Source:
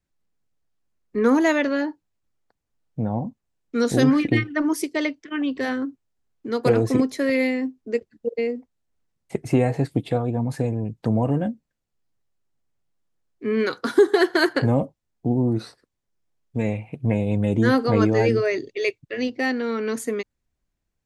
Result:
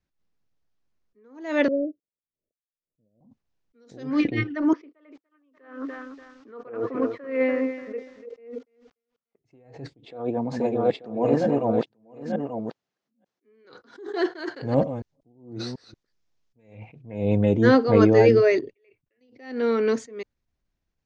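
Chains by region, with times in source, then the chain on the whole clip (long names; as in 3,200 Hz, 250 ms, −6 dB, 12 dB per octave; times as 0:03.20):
0:01.68–0:03.21: mu-law and A-law mismatch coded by A + Butterworth low-pass 630 Hz 96 dB per octave + spectral tilt +2.5 dB per octave
0:04.73–0:09.39: noise gate −42 dBFS, range −9 dB + loudspeaker in its box 300–2,400 Hz, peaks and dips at 370 Hz −5 dB, 800 Hz −4 dB, 1,200 Hz +9 dB, 2,100 Hz −4 dB + feedback echo at a low word length 291 ms, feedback 35%, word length 8 bits, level −11 dB
0:10.05–0:13.65: delay that plays each chunk backwards 462 ms, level −0.5 dB + high-pass filter 240 Hz + single-tap delay 885 ms −6.5 dB
0:14.47–0:16.75: delay that plays each chunk backwards 184 ms, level −14 dB + high-shelf EQ 3,100 Hz +8 dB
0:18.59–0:19.21: flat-topped bell 5,000 Hz −13 dB 1.3 octaves + downward compressor 4 to 1, threshold −32 dBFS
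whole clip: dynamic equaliser 470 Hz, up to +5 dB, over −33 dBFS, Q 1.1; Butterworth low-pass 6,400 Hz 36 dB per octave; level that may rise only so fast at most 110 dB per second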